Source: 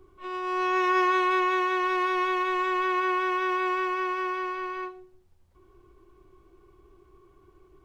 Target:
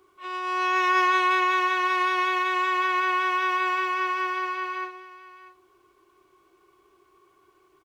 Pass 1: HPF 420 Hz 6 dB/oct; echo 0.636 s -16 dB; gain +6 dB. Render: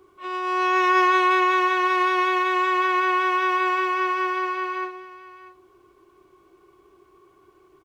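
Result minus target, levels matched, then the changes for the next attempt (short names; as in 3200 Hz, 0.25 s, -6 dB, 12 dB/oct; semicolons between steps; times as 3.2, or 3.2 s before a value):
500 Hz band +4.5 dB
change: HPF 1200 Hz 6 dB/oct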